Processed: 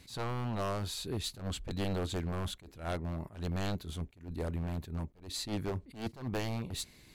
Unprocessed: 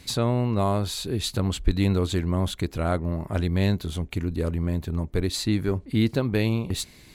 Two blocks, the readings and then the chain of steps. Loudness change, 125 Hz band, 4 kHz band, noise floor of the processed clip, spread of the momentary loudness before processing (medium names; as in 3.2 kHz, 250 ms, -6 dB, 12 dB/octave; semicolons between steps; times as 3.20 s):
-12.0 dB, -12.5 dB, -9.0 dB, -59 dBFS, 5 LU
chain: wavefolder -19.5 dBFS; attacks held to a fixed rise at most 150 dB/s; trim -8 dB